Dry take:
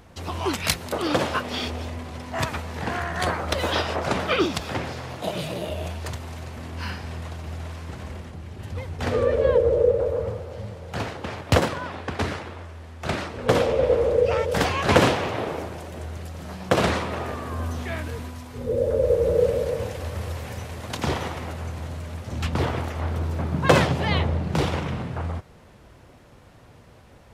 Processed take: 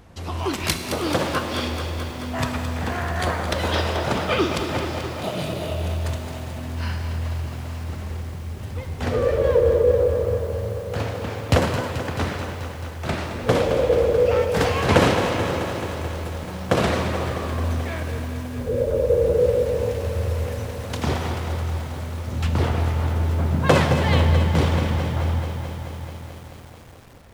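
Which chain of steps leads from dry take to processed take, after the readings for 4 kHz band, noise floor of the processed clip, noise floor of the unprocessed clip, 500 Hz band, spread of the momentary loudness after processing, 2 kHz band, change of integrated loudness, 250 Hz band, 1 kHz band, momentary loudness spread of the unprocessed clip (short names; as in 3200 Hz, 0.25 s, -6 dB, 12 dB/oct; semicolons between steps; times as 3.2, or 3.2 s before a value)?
+1.0 dB, -35 dBFS, -50 dBFS, +2.0 dB, 13 LU, +1.0 dB, +2.0 dB, +2.5 dB, +1.0 dB, 15 LU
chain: low shelf 270 Hz +3.5 dB; Schroeder reverb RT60 2.2 s, combs from 25 ms, DRR 7 dB; lo-fi delay 0.217 s, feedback 80%, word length 7-bit, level -9.5 dB; gain -1 dB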